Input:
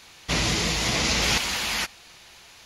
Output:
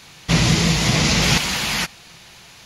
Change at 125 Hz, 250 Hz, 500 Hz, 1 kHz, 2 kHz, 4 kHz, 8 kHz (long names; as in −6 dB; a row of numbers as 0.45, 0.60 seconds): +12.0, +10.5, +5.0, +4.5, +4.5, +4.5, +4.5 decibels